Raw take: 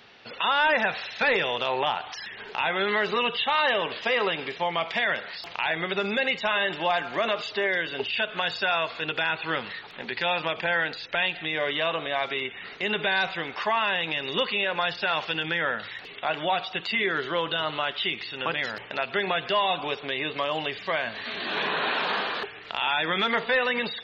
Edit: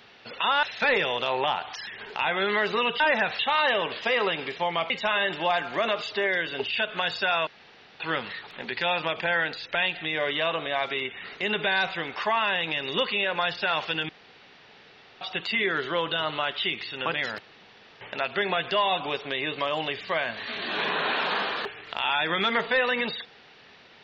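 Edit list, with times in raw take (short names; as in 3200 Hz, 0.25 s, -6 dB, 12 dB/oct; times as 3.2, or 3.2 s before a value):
0.63–1.02 move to 3.39
4.9–6.3 cut
8.87–9.4 room tone
15.49–16.61 room tone
18.79 insert room tone 0.62 s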